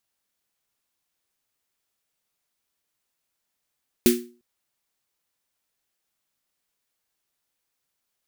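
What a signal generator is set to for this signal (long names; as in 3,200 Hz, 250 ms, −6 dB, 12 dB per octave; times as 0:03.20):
synth snare length 0.35 s, tones 240 Hz, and 360 Hz, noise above 1,600 Hz, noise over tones −6 dB, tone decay 0.38 s, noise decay 0.29 s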